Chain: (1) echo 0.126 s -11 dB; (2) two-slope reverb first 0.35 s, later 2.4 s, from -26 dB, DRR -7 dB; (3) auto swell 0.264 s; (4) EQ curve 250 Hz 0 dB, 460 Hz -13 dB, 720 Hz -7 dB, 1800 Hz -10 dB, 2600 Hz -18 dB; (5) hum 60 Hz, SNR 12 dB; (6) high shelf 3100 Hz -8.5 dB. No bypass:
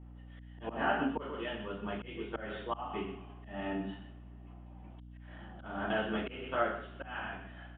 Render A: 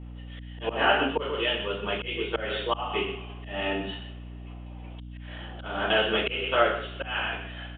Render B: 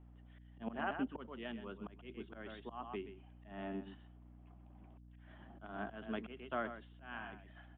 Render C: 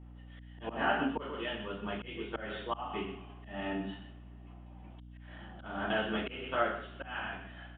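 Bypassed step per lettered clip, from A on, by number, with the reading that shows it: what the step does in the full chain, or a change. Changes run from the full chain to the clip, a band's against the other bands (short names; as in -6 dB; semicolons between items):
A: 4, 250 Hz band -5.5 dB; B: 2, loudness change -8.0 LU; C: 6, 2 kHz band +2.0 dB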